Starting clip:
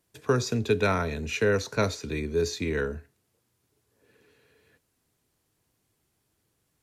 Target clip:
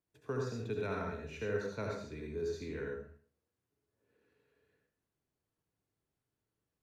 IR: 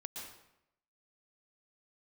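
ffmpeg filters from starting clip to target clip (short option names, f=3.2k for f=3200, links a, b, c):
-filter_complex "[0:a]highshelf=f=3k:g=-9.5[a];[1:a]atrim=start_sample=2205,asetrate=74970,aresample=44100[b];[a][b]afir=irnorm=-1:irlink=0,volume=-5dB"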